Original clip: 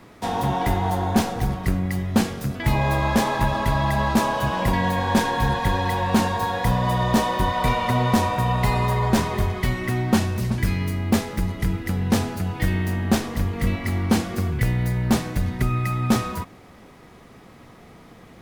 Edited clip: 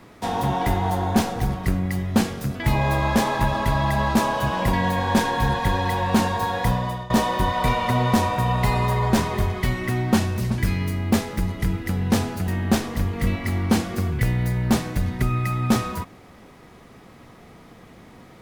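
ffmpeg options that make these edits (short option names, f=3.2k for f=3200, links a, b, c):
-filter_complex "[0:a]asplit=3[a][b][c];[a]atrim=end=7.1,asetpts=PTS-STARTPTS,afade=t=out:st=6.67:d=0.43:silence=0.112202[d];[b]atrim=start=7.1:end=12.482,asetpts=PTS-STARTPTS,afade=t=in:d=0.004:c=hsin:silence=0.112202[e];[c]atrim=start=12.878[f];[d][e]concat=n=2:v=0:a=1[g];[g][f]acrossfade=d=0.004:c1=hsin:c2=hsin"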